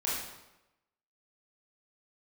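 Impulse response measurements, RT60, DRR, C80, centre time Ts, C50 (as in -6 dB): 0.95 s, -7.5 dB, 4.0 dB, 67 ms, 0.0 dB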